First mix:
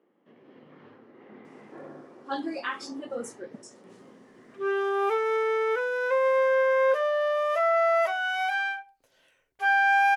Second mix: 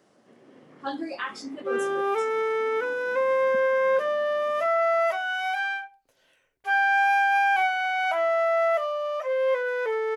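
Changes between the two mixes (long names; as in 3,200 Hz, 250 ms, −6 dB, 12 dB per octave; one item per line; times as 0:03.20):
speech: entry −1.45 s
second sound: entry −2.95 s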